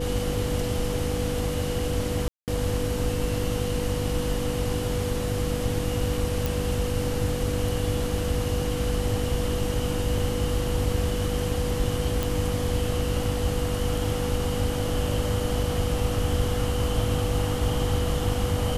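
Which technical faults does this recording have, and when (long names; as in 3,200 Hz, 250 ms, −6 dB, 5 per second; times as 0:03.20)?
mains hum 50 Hz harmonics 6 −31 dBFS
whistle 490 Hz −30 dBFS
0:02.28–0:02.48: drop-out 198 ms
0:06.46: click
0:12.23: click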